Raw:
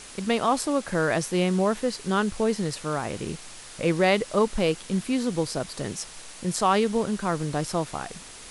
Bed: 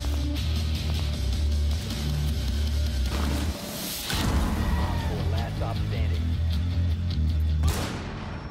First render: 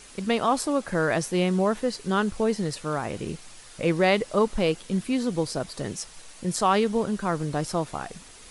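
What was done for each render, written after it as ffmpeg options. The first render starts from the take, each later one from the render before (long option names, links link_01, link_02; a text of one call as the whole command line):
ffmpeg -i in.wav -af "afftdn=noise_reduction=6:noise_floor=-44" out.wav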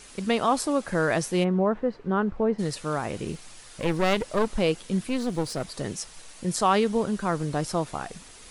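ffmpeg -i in.wav -filter_complex "[0:a]asplit=3[link_01][link_02][link_03];[link_01]afade=type=out:start_time=1.43:duration=0.02[link_04];[link_02]lowpass=1400,afade=type=in:start_time=1.43:duration=0.02,afade=type=out:start_time=2.58:duration=0.02[link_05];[link_03]afade=type=in:start_time=2.58:duration=0.02[link_06];[link_04][link_05][link_06]amix=inputs=3:normalize=0,asettb=1/sr,asplit=3[link_07][link_08][link_09];[link_07]atrim=end=3.314[link_10];[link_08]atrim=start=3.31:end=4.51,asetpts=PTS-STARTPTS,afade=type=in:duration=0.004:curve=qsin,afade=type=out:start_time=1.196:duration=0.004:curve=qsin,aeval=exprs='clip(val(0),-1,0.0282)':channel_layout=same[link_11];[link_09]atrim=start=4.506[link_12];[link_10][link_11]acrossfade=duration=0.004:curve1=hsin:curve2=qsin[link_13];[link_13][link_12]acrossfade=duration=0.004:curve1=qsin:curve2=hsin,asettb=1/sr,asplit=3[link_14][link_15][link_16];[link_14]atrim=end=5.074[link_17];[link_15]atrim=start=5.07:end=5.7,asetpts=PTS-STARTPTS,afade=type=in:duration=0.004:curve=qsin,afade=type=out:start_time=0.626:duration=0.004:curve=qsin,aeval=exprs='clip(val(0),-1,0.0237)':channel_layout=same[link_18];[link_16]atrim=start=5.696[link_19];[link_17][link_18]acrossfade=duration=0.004:curve1=hsin:curve2=qsin[link_20];[link_20][link_19]acrossfade=duration=0.004:curve1=qsin:curve2=hsin" out.wav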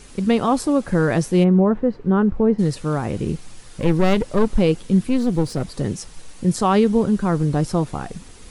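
ffmpeg -i in.wav -af "lowshelf=frequency=450:gain=12,bandreject=frequency=640:width=12" out.wav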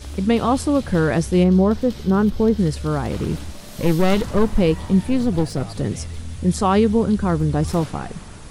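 ffmpeg -i in.wav -i bed.wav -filter_complex "[1:a]volume=-6dB[link_01];[0:a][link_01]amix=inputs=2:normalize=0" out.wav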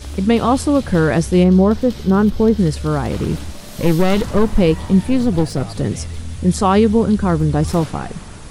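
ffmpeg -i in.wav -af "volume=3.5dB,alimiter=limit=-2dB:level=0:latency=1" out.wav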